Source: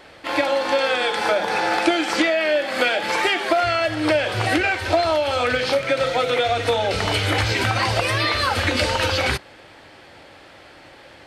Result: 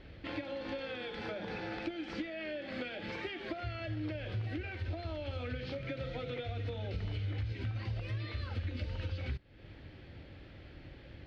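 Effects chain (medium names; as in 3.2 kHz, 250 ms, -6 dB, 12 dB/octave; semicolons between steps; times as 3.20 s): amplifier tone stack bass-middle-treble 10-0-1; compression 5:1, threshold -52 dBFS, peak gain reduction 19 dB; distance through air 280 m; trim +16 dB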